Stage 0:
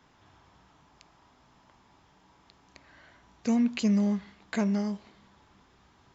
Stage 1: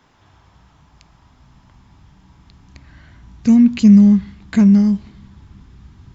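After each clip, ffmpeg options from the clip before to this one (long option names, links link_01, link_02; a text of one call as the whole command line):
ffmpeg -i in.wav -af "asubboost=boost=11.5:cutoff=170,volume=6dB" out.wav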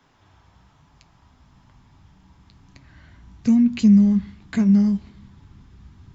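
ffmpeg -i in.wav -filter_complex "[0:a]acrossover=split=210[link_01][link_02];[link_02]acompressor=threshold=-15dB:ratio=6[link_03];[link_01][link_03]amix=inputs=2:normalize=0,flanger=delay=7.1:depth=4.8:regen=-60:speed=1.1:shape=sinusoidal" out.wav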